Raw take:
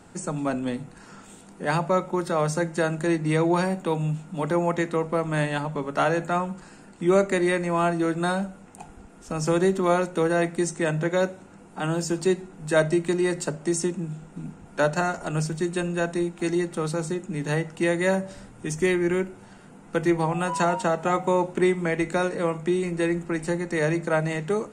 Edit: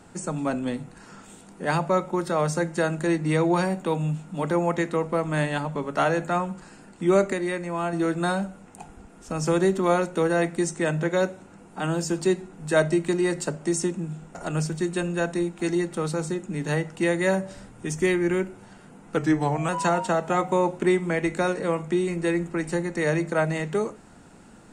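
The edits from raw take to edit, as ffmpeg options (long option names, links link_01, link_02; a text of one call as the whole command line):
ffmpeg -i in.wav -filter_complex "[0:a]asplit=6[link_01][link_02][link_03][link_04][link_05][link_06];[link_01]atrim=end=7.332[link_07];[link_02]atrim=start=7.328:end=7.932,asetpts=PTS-STARTPTS,volume=-5dB[link_08];[link_03]atrim=start=7.928:end=14.352[link_09];[link_04]atrim=start=15.148:end=19.974[link_10];[link_05]atrim=start=19.97:end=20.44,asetpts=PTS-STARTPTS,asetrate=40131,aresample=44100[link_11];[link_06]atrim=start=20.436[link_12];[link_07][link_08]acrossfade=duration=0.004:curve1=hsin:curve2=hsin[link_13];[link_13][link_09]acrossfade=duration=0.004:curve1=hsin:curve2=hsin[link_14];[link_14][link_10]acrossfade=duration=0.004:curve1=hsin:curve2=hsin[link_15];[link_15][link_11]acrossfade=duration=0.004:curve1=hsin:curve2=hsin[link_16];[link_16][link_12]acrossfade=duration=0.004:curve1=hsin:curve2=hsin" out.wav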